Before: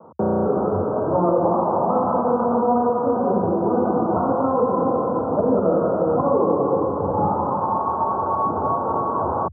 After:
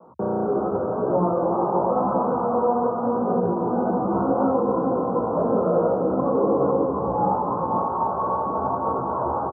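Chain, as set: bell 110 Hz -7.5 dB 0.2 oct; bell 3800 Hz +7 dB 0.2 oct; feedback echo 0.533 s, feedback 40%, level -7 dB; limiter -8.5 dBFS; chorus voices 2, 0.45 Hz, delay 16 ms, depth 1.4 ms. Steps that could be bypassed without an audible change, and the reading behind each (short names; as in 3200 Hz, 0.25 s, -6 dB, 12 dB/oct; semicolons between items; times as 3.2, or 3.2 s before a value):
bell 3800 Hz: input band ends at 1400 Hz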